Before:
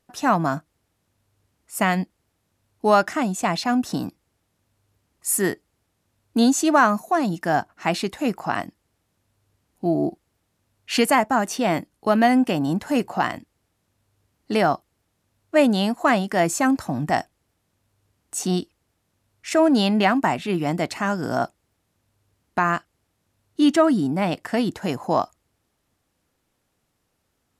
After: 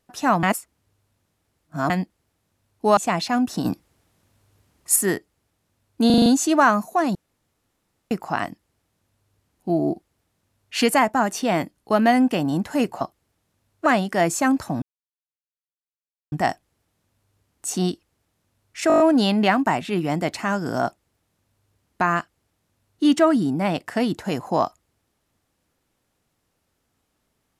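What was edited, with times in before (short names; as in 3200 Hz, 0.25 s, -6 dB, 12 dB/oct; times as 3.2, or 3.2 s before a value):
0.43–1.9 reverse
2.97–3.33 cut
4.01–5.32 gain +6.5 dB
6.42 stutter 0.04 s, 6 plays
7.31–8.27 room tone
13.17–14.71 cut
15.56–16.05 cut
17.01 insert silence 1.50 s
19.57 stutter 0.02 s, 7 plays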